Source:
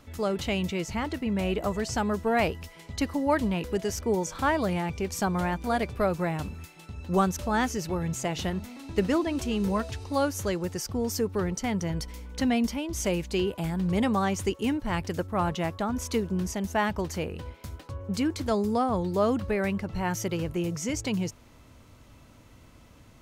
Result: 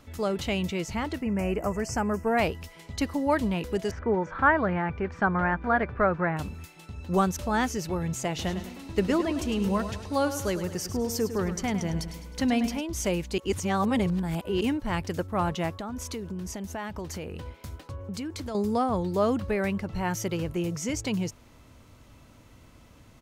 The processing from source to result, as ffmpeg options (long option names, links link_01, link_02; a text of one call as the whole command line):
ffmpeg -i in.wav -filter_complex "[0:a]asettb=1/sr,asplit=3[link_01][link_02][link_03];[link_01]atrim=end=1.224[link_04];[link_02]atrim=start=1.22:end=2.38,asetpts=PTS-STARTPTS,afade=type=in:duration=0.004:curve=qsin,afade=type=out:start_time=1.156:duration=0.004:curve=qsin,asuperstop=centerf=3700:order=4:qfactor=1.5[link_05];[link_03]atrim=start=2.376[link_06];[link_04][link_05]acrossfade=duration=0.004:curve1=hsin:curve2=qsin[link_07];[link_07][link_06]acrossfade=duration=0.004:curve1=qsin:curve2=hsin,asettb=1/sr,asplit=3[link_08][link_09][link_10];[link_08]atrim=end=3.914[link_11];[link_09]atrim=start=3.91:end=6.37,asetpts=PTS-STARTPTS,afade=type=in:duration=0.004:curve=qsin,afade=type=out:start_time=2.456:duration=0.004:curve=qsin,lowpass=frequency=1600:width_type=q:width=2.8[link_12];[link_10]atrim=start=6.366[link_13];[link_11][link_12]acrossfade=duration=0.004:curve1=hsin:curve2=qsin[link_14];[link_14][link_13]acrossfade=duration=0.004:curve1=qsin:curve2=hsin,asplit=3[link_15][link_16][link_17];[link_15]afade=type=out:start_time=8.4:duration=0.02[link_18];[link_16]aecho=1:1:104|208|312|416|520:0.299|0.137|0.0632|0.0291|0.0134,afade=type=in:start_time=8.4:duration=0.02,afade=type=out:start_time=12.8:duration=0.02[link_19];[link_17]afade=type=in:start_time=12.8:duration=0.02[link_20];[link_18][link_19][link_20]amix=inputs=3:normalize=0,asettb=1/sr,asplit=3[link_21][link_22][link_23];[link_21]atrim=end=15.794[link_24];[link_22]atrim=start=15.79:end=18.55,asetpts=PTS-STARTPTS,afade=type=in:duration=0.004:curve=qsin,afade=type=out:start_time=2.756:duration=0.004:curve=qsin,acompressor=threshold=-32dB:ratio=4:attack=3.2:release=140:knee=1:detection=peak[link_25];[link_23]atrim=start=18.546[link_26];[link_24][link_25]acrossfade=duration=0.004:curve1=hsin:curve2=qsin[link_27];[link_27][link_26]acrossfade=duration=0.004:curve1=qsin:curve2=hsin,asplit=3[link_28][link_29][link_30];[link_28]atrim=end=13.382[link_31];[link_29]atrim=start=13.378:end=14.612,asetpts=PTS-STARTPTS,areverse[link_32];[link_30]atrim=start=14.608[link_33];[link_31][link_32]acrossfade=duration=0.004:curve1=hsin:curve2=hsin[link_34];[link_34][link_33]acrossfade=duration=0.004:curve1=hsin:curve2=hsin" out.wav